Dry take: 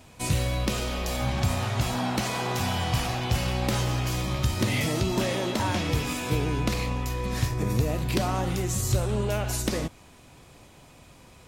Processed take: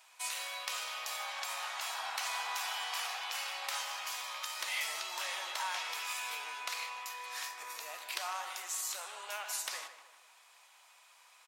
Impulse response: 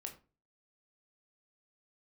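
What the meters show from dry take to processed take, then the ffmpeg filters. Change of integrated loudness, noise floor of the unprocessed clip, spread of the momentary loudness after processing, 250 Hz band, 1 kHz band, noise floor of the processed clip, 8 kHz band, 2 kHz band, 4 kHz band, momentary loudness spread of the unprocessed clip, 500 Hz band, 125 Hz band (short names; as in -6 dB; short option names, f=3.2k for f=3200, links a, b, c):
-10.0 dB, -52 dBFS, 6 LU, under -40 dB, -7.5 dB, -62 dBFS, -5.0 dB, -4.5 dB, -5.0 dB, 3 LU, -21.0 dB, under -40 dB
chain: -filter_complex "[0:a]highpass=f=890:w=0.5412,highpass=f=890:w=1.3066,asplit=2[a][b];[b]adelay=154,lowpass=f=2.4k:p=1,volume=-10dB,asplit=2[c][d];[d]adelay=154,lowpass=f=2.4k:p=1,volume=0.49,asplit=2[e][f];[f]adelay=154,lowpass=f=2.4k:p=1,volume=0.49,asplit=2[g][h];[h]adelay=154,lowpass=f=2.4k:p=1,volume=0.49,asplit=2[i][j];[j]adelay=154,lowpass=f=2.4k:p=1,volume=0.49[k];[c][e][g][i][k]amix=inputs=5:normalize=0[l];[a][l]amix=inputs=2:normalize=0,volume=-5dB"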